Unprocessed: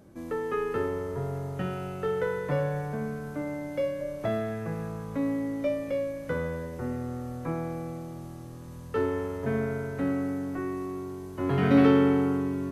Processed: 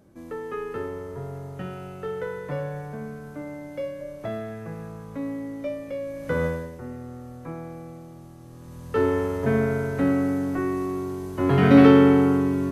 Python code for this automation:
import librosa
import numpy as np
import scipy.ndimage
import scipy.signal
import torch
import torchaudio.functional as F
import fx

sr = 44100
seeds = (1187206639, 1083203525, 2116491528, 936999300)

y = fx.gain(x, sr, db=fx.line((5.99, -2.5), (6.45, 7.5), (6.81, -4.0), (8.37, -4.0), (9.08, 6.5)))